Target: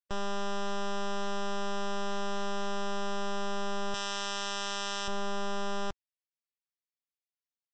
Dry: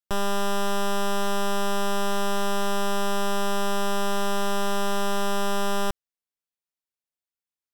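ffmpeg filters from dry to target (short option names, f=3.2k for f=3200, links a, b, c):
-filter_complex "[0:a]asettb=1/sr,asplit=3[a][b][c];[a]atrim=end=3.944[d];[b]atrim=start=3.94:end=5.08,asetpts=PTS-STARTPTS,afade=t=in:d=0.004:c=qsin,afade=t=out:st=1.136:d=0.004:c=qsin,tiltshelf=f=1.1k:g=-9[e];[c]atrim=start=5.076[f];[d][e]acrossfade=d=0.004:c1=hsin:c2=qsin[g];[g][f]acrossfade=d=0.004:c1=qsin:c2=hsin,volume=-8dB" -ar 16000 -c:a libvorbis -b:a 64k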